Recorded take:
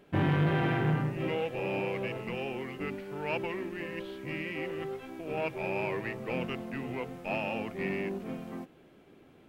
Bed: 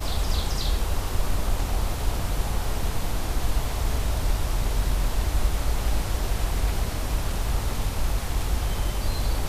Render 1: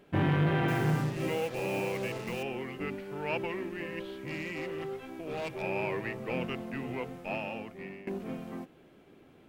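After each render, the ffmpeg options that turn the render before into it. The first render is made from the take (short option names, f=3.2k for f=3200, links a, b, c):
-filter_complex "[0:a]asettb=1/sr,asplit=3[a][b][c];[a]atrim=end=0.684[d];[b]atrim=start=0.68:end=2.43,asetpts=PTS-STARTPTS,afade=t=in:d=0.004:c=qsin,afade=t=out:st=1.746:d=0.004:c=qsin,acrusher=bits=6:mix=0:aa=0.5[e];[c]atrim=start=2.426[f];[d][e]acrossfade=d=0.004:c1=hsin:c2=qsin[g];[g][f]acrossfade=d=0.004:c1=qsin:c2=hsin,asettb=1/sr,asplit=3[h][i][j];[h]atrim=end=4.164[k];[i]atrim=start=4.16:end=5.62,asetpts=PTS-STARTPTS,afade=t=in:d=0.004:c=qsin,afade=t=out:st=1.456:d=0.004:c=qsin,volume=32.5dB,asoftclip=hard,volume=-32.5dB[l];[j]atrim=start=5.616[m];[k][l]acrossfade=d=0.004:c1=hsin:c2=qsin[n];[n][m]acrossfade=d=0.004:c1=qsin:c2=hsin,asplit=2[o][p];[o]atrim=end=8.07,asetpts=PTS-STARTPTS,afade=t=out:st=7.07:d=1:silence=0.149624[q];[p]atrim=start=8.07,asetpts=PTS-STARTPTS,afade=t=in:d=0.004:c=hsin:silence=0.149624[r];[q][r]concat=n=2:v=0:a=1"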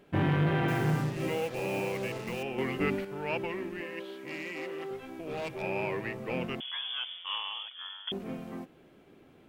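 -filter_complex "[0:a]asettb=1/sr,asplit=3[a][b][c];[a]atrim=end=2.584[d];[b]atrim=start=2.58:end=3.05,asetpts=PTS-STARTPTS,afade=t=in:d=0.004:c=qsin,afade=t=out:st=0.466:d=0.004:c=qsin,acontrast=81[e];[c]atrim=start=3.046[f];[d][e]acrossfade=d=0.004:c1=hsin:c2=qsin[g];[g][f]acrossfade=d=0.004:c1=qsin:c2=hsin,asettb=1/sr,asplit=3[h][i][j];[h]atrim=end=3.814[k];[i]atrim=start=3.81:end=4.91,asetpts=PTS-STARTPTS,afade=t=in:d=0.004:c=qsin,afade=t=out:st=1.096:d=0.004:c=qsin,highpass=270[l];[j]atrim=start=4.906[m];[k][l]acrossfade=d=0.004:c1=hsin:c2=qsin[n];[n][m]acrossfade=d=0.004:c1=qsin:c2=hsin,asettb=1/sr,asplit=3[o][p][q];[o]atrim=end=6.604[r];[p]atrim=start=6.6:end=8.12,asetpts=PTS-STARTPTS,afade=t=in:d=0.004:c=qsin,afade=t=out:st=1.516:d=0.004:c=qsin,lowpass=f=3.1k:t=q:w=0.5098,lowpass=f=3.1k:t=q:w=0.6013,lowpass=f=3.1k:t=q:w=0.9,lowpass=f=3.1k:t=q:w=2.563,afreqshift=-3600[s];[q]atrim=start=8.116[t];[r][s]acrossfade=d=0.004:c1=hsin:c2=qsin[u];[u][t]acrossfade=d=0.004:c1=qsin:c2=hsin"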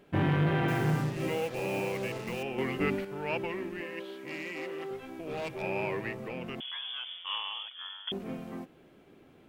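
-filter_complex "[0:a]asettb=1/sr,asplit=3[a][b][c];[a]atrim=end=6.134[d];[b]atrim=start=6.13:end=7.24,asetpts=PTS-STARTPTS,afade=t=in:d=0.004:c=qsin,afade=t=out:st=1.106:d=0.004:c=qsin,acompressor=threshold=-35dB:ratio=3:attack=3.2:release=140:knee=1:detection=peak[e];[c]atrim=start=7.236[f];[d][e]acrossfade=d=0.004:c1=hsin:c2=qsin[g];[g][f]acrossfade=d=0.004:c1=qsin:c2=hsin"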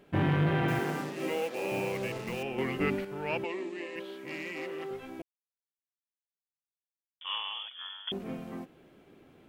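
-filter_complex "[0:a]asettb=1/sr,asplit=3[a][b][c];[a]atrim=end=0.794[d];[b]atrim=start=0.79:end=1.72,asetpts=PTS-STARTPTS,afade=t=in:d=0.004:c=qsin,afade=t=out:st=0.926:d=0.004:c=qsin,highpass=f=210:w=0.5412,highpass=f=210:w=1.3066[e];[c]atrim=start=1.716[f];[d][e]acrossfade=d=0.004:c1=hsin:c2=qsin[g];[g][f]acrossfade=d=0.004:c1=qsin:c2=hsin,asettb=1/sr,asplit=3[h][i][j];[h]atrim=end=3.444[k];[i]atrim=start=3.44:end=3.96,asetpts=PTS-STARTPTS,afade=t=in:d=0.004:c=qsin,afade=t=out:st=0.516:d=0.004:c=qsin,highpass=320,equalizer=f=340:t=q:w=4:g=4,equalizer=f=1.5k:t=q:w=4:g=-10,equalizer=f=4k:t=q:w=4:g=6,equalizer=f=7.4k:t=q:w=4:g=8,lowpass=f=8.5k:w=0.5412,lowpass=f=8.5k:w=1.3066[l];[j]atrim=start=3.956[m];[k][l]acrossfade=d=0.004:c1=hsin:c2=qsin[n];[n][m]acrossfade=d=0.004:c1=qsin:c2=hsin,asplit=3[o][p][q];[o]atrim=end=5.22,asetpts=PTS-STARTPTS,afade=t=out:st=5.216:d=0.004:c=hsin[r];[p]atrim=start=5.22:end=7.21,asetpts=PTS-STARTPTS,volume=0[s];[q]atrim=start=7.21,asetpts=PTS-STARTPTS,afade=t=in:d=0.004:c=hsin[t];[r][s][t]concat=n=3:v=0:a=1"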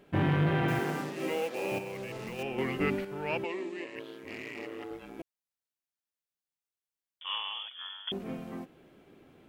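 -filter_complex "[0:a]asettb=1/sr,asplit=3[a][b][c];[a]atrim=end=1.784[d];[b]atrim=start=1.78:end=2.39,asetpts=PTS-STARTPTS,afade=t=in:d=0.004:c=qsin,afade=t=out:st=0.606:d=0.004:c=qsin,acompressor=threshold=-35dB:ratio=10:attack=3.2:release=140:knee=1:detection=peak[e];[c]atrim=start=2.386[f];[d][e]acrossfade=d=0.004:c1=hsin:c2=qsin[g];[g][f]acrossfade=d=0.004:c1=qsin:c2=hsin,asettb=1/sr,asplit=3[h][i][j];[h]atrim=end=3.844[k];[i]atrim=start=3.84:end=5.19,asetpts=PTS-STARTPTS,afade=t=in:d=0.004:c=qsin,afade=t=out:st=1.346:d=0.004:c=qsin,aeval=exprs='val(0)*sin(2*PI*56*n/s)':c=same[l];[j]atrim=start=5.186[m];[k][l]acrossfade=d=0.004:c1=hsin:c2=qsin[n];[n][m]acrossfade=d=0.004:c1=qsin:c2=hsin"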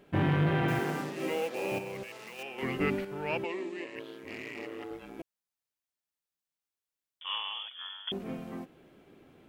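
-filter_complex "[0:a]asettb=1/sr,asplit=3[a][b][c];[a]atrim=end=2.034[d];[b]atrim=start=2.03:end=2.63,asetpts=PTS-STARTPTS,afade=t=in:d=0.004:c=qsin,afade=t=out:st=0.596:d=0.004:c=qsin,highpass=f=1.1k:p=1[e];[c]atrim=start=2.626[f];[d][e]acrossfade=d=0.004:c1=hsin:c2=qsin[g];[g][f]acrossfade=d=0.004:c1=qsin:c2=hsin"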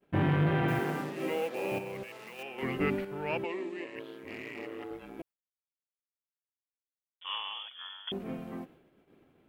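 -af "agate=range=-33dB:threshold=-51dB:ratio=3:detection=peak,equalizer=f=6k:t=o:w=1.5:g=-5.5"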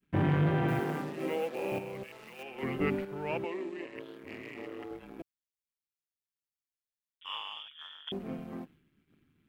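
-filter_complex "[0:a]acrossover=split=280|1200[a][b][c];[b]aeval=exprs='sgn(val(0))*max(abs(val(0))-0.00119,0)':c=same[d];[c]tremolo=f=150:d=0.71[e];[a][d][e]amix=inputs=3:normalize=0"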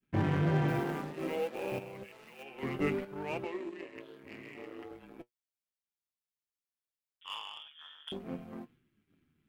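-filter_complex "[0:a]flanger=delay=8.3:depth=6.3:regen=56:speed=0.57:shape=sinusoidal,asplit=2[a][b];[b]acrusher=bits=5:mix=0:aa=0.5,volume=-10.5dB[c];[a][c]amix=inputs=2:normalize=0"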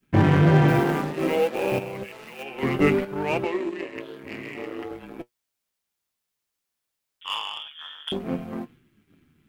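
-af "volume=12dB"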